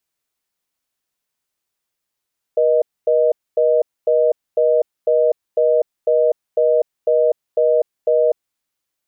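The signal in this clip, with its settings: call progress tone reorder tone, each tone -14.5 dBFS 5.94 s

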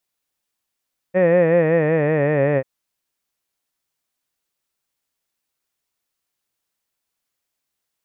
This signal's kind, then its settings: formant-synthesis vowel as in head, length 1.49 s, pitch 179 Hz, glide -4.5 st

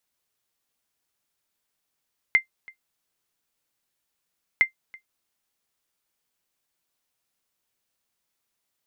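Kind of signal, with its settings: sonar ping 2.09 kHz, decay 0.11 s, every 2.26 s, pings 2, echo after 0.33 s, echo -25.5 dB -8.5 dBFS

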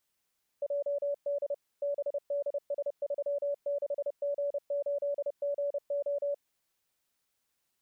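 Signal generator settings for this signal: Morse "JD BDS36G8GO" 30 wpm 571 Hz -28.5 dBFS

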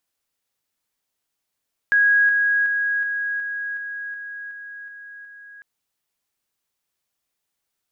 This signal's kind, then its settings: level ladder 1.65 kHz -13 dBFS, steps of -3 dB, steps 10, 0.37 s 0.00 s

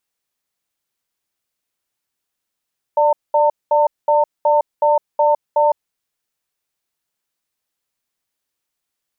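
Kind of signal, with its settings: cadence 591 Hz, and 904 Hz, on 0.16 s, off 0.21 s, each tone -13.5 dBFS 2.85 s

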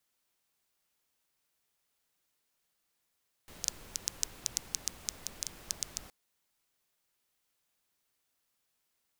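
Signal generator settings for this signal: rain from filtered ticks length 2.62 s, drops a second 6.2, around 6.1 kHz, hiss -10.5 dB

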